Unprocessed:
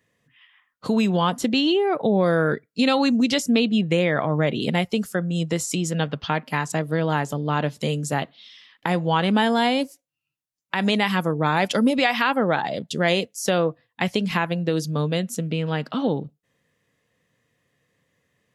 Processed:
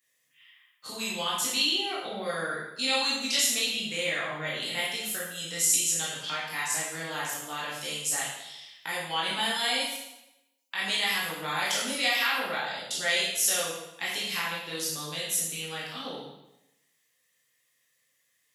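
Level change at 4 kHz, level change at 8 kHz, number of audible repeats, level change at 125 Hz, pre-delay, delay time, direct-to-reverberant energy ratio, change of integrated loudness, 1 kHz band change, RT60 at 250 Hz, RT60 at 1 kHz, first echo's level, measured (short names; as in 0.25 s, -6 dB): +1.0 dB, +7.5 dB, none, -21.0 dB, 14 ms, none, -7.5 dB, -5.5 dB, -9.0 dB, 0.90 s, 0.90 s, none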